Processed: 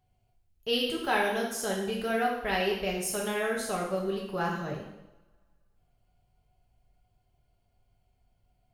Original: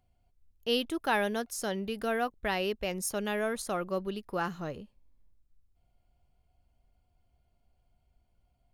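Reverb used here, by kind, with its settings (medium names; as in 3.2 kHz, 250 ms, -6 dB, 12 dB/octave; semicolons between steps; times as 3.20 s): two-slope reverb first 0.81 s, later 2.2 s, from -25 dB, DRR -3.5 dB; trim -2.5 dB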